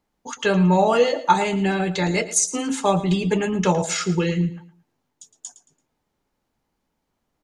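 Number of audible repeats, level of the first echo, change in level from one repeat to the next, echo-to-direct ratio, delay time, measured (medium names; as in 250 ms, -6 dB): 2, -15.0 dB, -11.0 dB, -14.5 dB, 112 ms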